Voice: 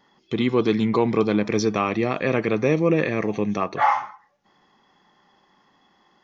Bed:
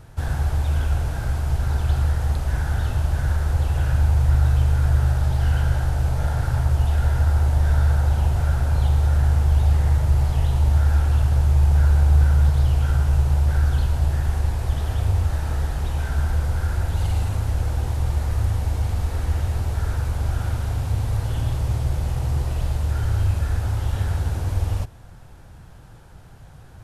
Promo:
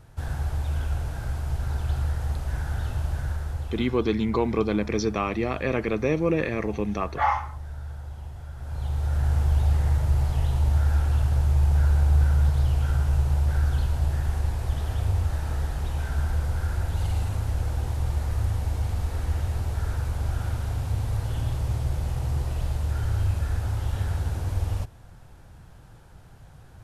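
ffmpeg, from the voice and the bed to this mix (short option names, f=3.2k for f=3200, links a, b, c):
-filter_complex "[0:a]adelay=3400,volume=-4dB[a];[1:a]volume=8.5dB,afade=t=out:st=3.1:d=0.91:silence=0.237137,afade=t=in:st=8.55:d=0.84:silence=0.188365[b];[a][b]amix=inputs=2:normalize=0"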